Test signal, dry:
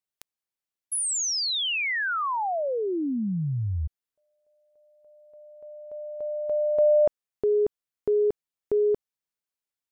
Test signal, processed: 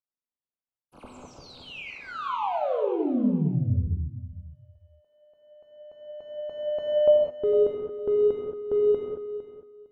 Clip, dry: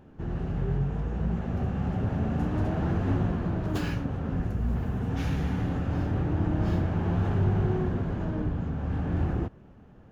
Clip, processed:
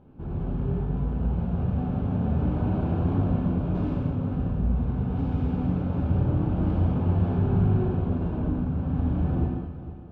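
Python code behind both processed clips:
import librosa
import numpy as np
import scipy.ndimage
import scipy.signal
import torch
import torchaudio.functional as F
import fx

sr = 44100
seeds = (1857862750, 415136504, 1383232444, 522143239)

p1 = scipy.ndimage.median_filter(x, 25, mode='constant')
p2 = scipy.signal.sosfilt(scipy.signal.butter(2, 2500.0, 'lowpass', fs=sr, output='sos'), p1)
p3 = fx.peak_eq(p2, sr, hz=1900.0, db=-14.0, octaves=0.25)
p4 = fx.comb_fb(p3, sr, f0_hz=250.0, decay_s=0.78, harmonics='all', damping=0.2, mix_pct=70)
p5 = p4 + fx.echo_feedback(p4, sr, ms=457, feedback_pct=18, wet_db=-13.0, dry=0)
p6 = fx.rev_gated(p5, sr, seeds[0], gate_ms=240, shape='flat', drr_db=-1.0)
y = F.gain(torch.from_numpy(p6), 8.0).numpy()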